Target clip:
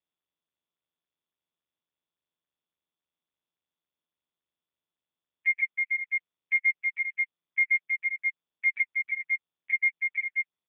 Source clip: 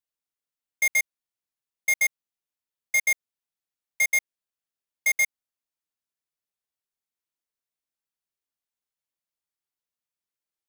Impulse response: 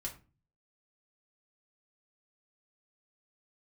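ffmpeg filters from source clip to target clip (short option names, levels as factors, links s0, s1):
-filter_complex "[0:a]areverse,adynamicequalizer=threshold=0.0112:dfrequency=1100:dqfactor=1.1:tfrequency=1100:tqfactor=1.1:attack=5:release=100:ratio=0.375:range=2:mode=boostabove:tftype=bell,asplit=2[s0][s1];[s1]adelay=24,volume=0.422[s2];[s0][s2]amix=inputs=2:normalize=0,asplit=2[s3][s4];[1:a]atrim=start_sample=2205[s5];[s4][s5]afir=irnorm=-1:irlink=0,volume=0.224[s6];[s3][s6]amix=inputs=2:normalize=0,acrossover=split=470[s7][s8];[s8]acompressor=threshold=0.0501:ratio=4[s9];[s7][s9]amix=inputs=2:normalize=0,lowshelf=f=82:g=10,aecho=1:1:320|528|663.2|751.1|808.2:0.631|0.398|0.251|0.158|0.1,aeval=exprs='val(0)+0.00158*(sin(2*PI*50*n/s)+sin(2*PI*2*50*n/s)/2+sin(2*PI*3*50*n/s)/3+sin(2*PI*4*50*n/s)/4+sin(2*PI*5*50*n/s)/5)':c=same,bandreject=f=60:t=h:w=6,bandreject=f=120:t=h:w=6,bandreject=f=180:t=h:w=6,bandreject=f=240:t=h:w=6,bandreject=f=300:t=h:w=6,bandreject=f=360:t=h:w=6,bandreject=f=420:t=h:w=6,bandreject=f=480:t=h:w=6,bandreject=f=540:t=h:w=6,afftfilt=real='re*gte(hypot(re,im),0.224)':imag='im*gte(hypot(re,im),0.224)':win_size=1024:overlap=0.75,volume=1.78" -ar 8000 -c:a libopencore_amrnb -b:a 5150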